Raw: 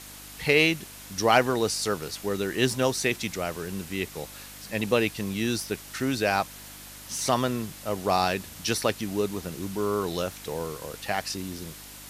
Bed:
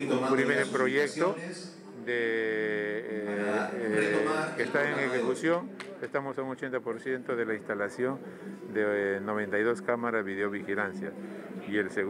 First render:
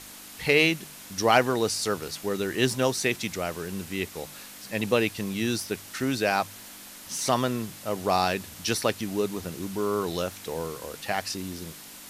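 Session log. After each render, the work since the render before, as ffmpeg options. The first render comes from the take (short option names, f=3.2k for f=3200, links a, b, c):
-af "bandreject=f=50:t=h:w=4,bandreject=f=100:t=h:w=4,bandreject=f=150:t=h:w=4"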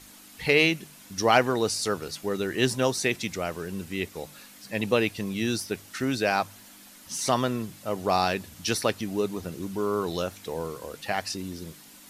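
-af "afftdn=nr=7:nf=-45"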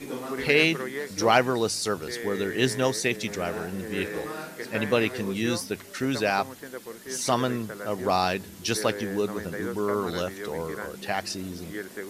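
-filter_complex "[1:a]volume=-6.5dB[a];[0:a][a]amix=inputs=2:normalize=0"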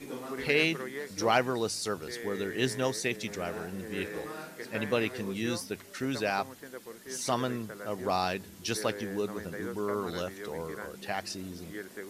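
-af "volume=-5.5dB"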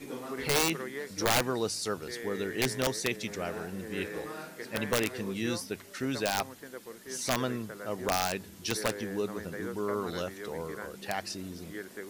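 -af "aeval=exprs='(mod(8.41*val(0)+1,2)-1)/8.41':c=same"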